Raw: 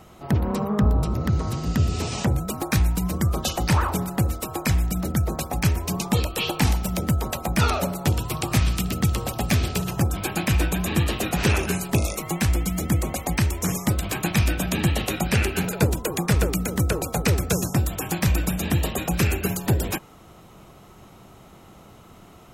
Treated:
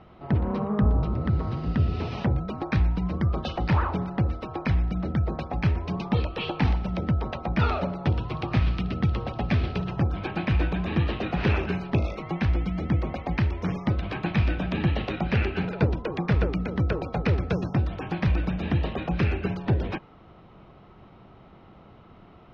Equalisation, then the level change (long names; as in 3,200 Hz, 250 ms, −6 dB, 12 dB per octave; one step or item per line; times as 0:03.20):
Savitzky-Golay smoothing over 15 samples
high-frequency loss of the air 250 metres
−2.0 dB